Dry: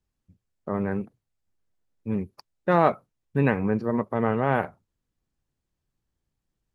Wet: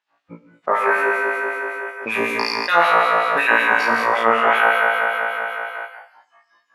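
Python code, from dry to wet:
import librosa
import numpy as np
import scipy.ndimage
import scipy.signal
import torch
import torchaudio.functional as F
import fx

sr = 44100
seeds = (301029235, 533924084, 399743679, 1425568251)

p1 = fx.env_lowpass(x, sr, base_hz=1300.0, full_db=-23.0)
p2 = fx.low_shelf(p1, sr, hz=170.0, db=-6.5)
p3 = p2 + fx.room_flutter(p2, sr, wall_m=3.0, rt60_s=1.4, dry=0)
p4 = fx.filter_lfo_highpass(p3, sr, shape='sine', hz=5.3, low_hz=790.0, high_hz=3600.0, q=0.78)
p5 = fx.noise_reduce_blind(p4, sr, reduce_db=19)
p6 = fx.rider(p5, sr, range_db=3, speed_s=0.5)
p7 = p5 + F.gain(torch.from_numpy(p6), -2.0).numpy()
p8 = fx.rev_gated(p7, sr, seeds[0], gate_ms=260, shape='flat', drr_db=10.0)
p9 = fx.env_flatten(p8, sr, amount_pct=70)
y = F.gain(torch.from_numpy(p9), -1.5).numpy()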